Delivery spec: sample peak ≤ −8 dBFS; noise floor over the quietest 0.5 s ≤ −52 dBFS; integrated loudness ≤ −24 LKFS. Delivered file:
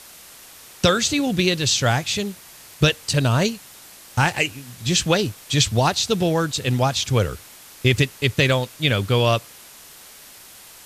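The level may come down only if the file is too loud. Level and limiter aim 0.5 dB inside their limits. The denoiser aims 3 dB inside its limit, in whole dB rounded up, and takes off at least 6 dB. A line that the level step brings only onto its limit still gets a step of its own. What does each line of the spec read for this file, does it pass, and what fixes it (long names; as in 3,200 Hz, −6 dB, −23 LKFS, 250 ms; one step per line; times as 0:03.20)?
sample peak −5.0 dBFS: out of spec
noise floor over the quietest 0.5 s −44 dBFS: out of spec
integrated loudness −20.5 LKFS: out of spec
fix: broadband denoise 7 dB, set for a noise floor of −44 dBFS
level −4 dB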